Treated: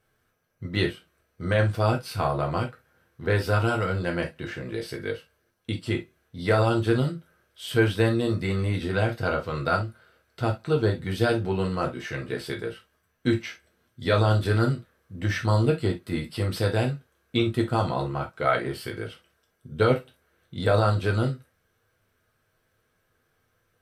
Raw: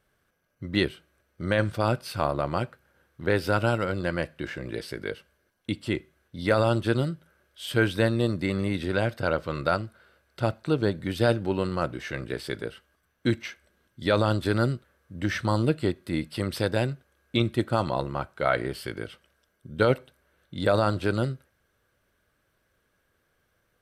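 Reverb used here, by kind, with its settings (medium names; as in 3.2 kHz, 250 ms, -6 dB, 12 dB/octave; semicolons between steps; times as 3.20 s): gated-style reverb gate 90 ms falling, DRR 0.5 dB; trim -2 dB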